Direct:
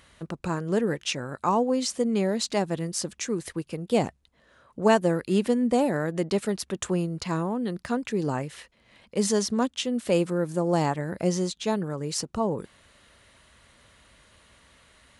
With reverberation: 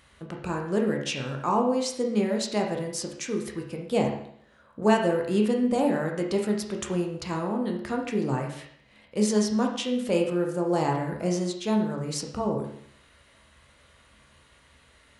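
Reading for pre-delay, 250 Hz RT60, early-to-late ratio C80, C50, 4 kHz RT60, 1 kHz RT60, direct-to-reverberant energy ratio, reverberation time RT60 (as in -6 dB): 14 ms, 0.65 s, 9.0 dB, 5.5 dB, 0.65 s, 0.65 s, 0.5 dB, 0.65 s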